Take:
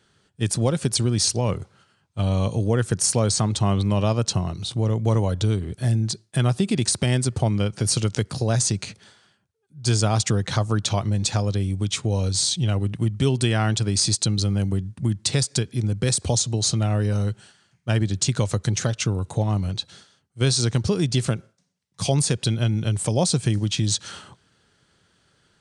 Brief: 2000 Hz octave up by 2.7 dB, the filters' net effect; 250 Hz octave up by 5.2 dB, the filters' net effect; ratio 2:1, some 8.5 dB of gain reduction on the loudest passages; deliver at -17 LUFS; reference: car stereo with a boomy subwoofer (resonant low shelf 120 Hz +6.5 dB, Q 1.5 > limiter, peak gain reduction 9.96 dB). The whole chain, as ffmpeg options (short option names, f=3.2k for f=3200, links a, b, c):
-af "equalizer=f=250:t=o:g=8.5,equalizer=f=2k:t=o:g=3.5,acompressor=threshold=-28dB:ratio=2,lowshelf=f=120:t=q:w=1.5:g=6.5,volume=12dB,alimiter=limit=-8dB:level=0:latency=1"